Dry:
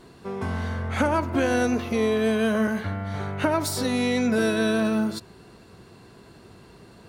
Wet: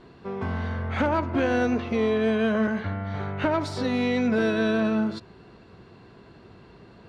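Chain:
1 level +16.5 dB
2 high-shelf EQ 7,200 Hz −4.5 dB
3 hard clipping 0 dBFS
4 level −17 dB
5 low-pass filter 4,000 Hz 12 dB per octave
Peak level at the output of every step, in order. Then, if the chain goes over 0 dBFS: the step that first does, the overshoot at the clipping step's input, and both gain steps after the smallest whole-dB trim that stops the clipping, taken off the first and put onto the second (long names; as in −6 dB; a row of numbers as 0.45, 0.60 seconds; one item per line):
+7.0, +7.0, 0.0, −17.0, −16.5 dBFS
step 1, 7.0 dB
step 1 +9.5 dB, step 4 −10 dB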